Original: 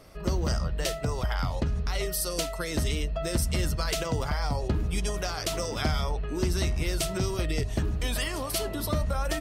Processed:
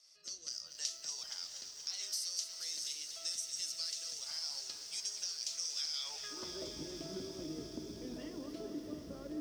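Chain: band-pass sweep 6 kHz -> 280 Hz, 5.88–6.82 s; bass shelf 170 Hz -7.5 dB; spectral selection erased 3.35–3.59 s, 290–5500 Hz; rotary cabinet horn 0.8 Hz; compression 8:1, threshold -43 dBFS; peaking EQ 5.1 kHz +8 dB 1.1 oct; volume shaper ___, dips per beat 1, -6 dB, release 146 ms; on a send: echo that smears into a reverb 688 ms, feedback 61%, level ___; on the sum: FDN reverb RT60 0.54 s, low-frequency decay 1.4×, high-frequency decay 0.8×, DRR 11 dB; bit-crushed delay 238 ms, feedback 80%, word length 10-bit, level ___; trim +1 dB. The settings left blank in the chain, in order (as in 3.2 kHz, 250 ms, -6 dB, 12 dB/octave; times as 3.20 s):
123 bpm, -10 dB, -10 dB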